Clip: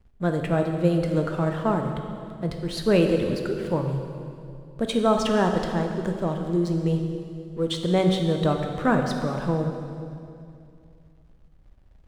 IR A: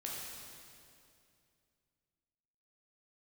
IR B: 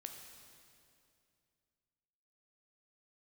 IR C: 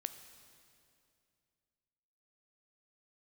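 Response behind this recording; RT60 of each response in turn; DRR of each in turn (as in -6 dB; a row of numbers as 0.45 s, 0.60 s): B; 2.5 s, 2.5 s, 2.5 s; -4.0 dB, 3.5 dB, 9.5 dB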